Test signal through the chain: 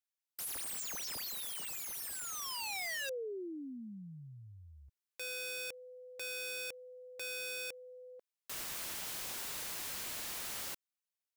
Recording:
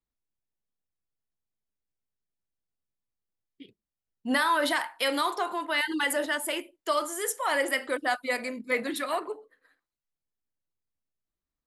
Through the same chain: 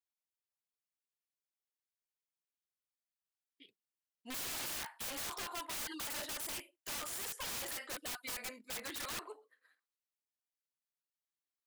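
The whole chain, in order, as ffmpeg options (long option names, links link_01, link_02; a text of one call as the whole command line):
ffmpeg -i in.wav -af "highpass=frequency=1400:poles=1,aeval=exprs='(mod(39.8*val(0)+1,2)-1)/39.8':channel_layout=same,volume=-4dB" out.wav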